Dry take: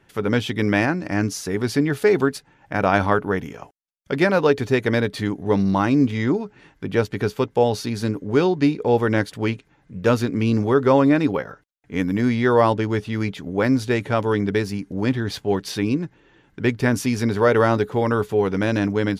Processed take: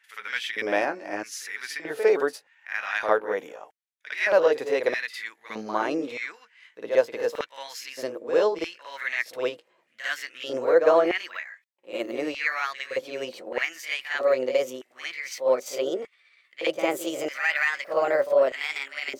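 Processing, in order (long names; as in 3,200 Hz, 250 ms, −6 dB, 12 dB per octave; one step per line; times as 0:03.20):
pitch glide at a constant tempo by +5.5 semitones starting unshifted
auto-filter high-pass square 0.81 Hz 530–1,900 Hz
backwards echo 55 ms −9 dB
level −5.5 dB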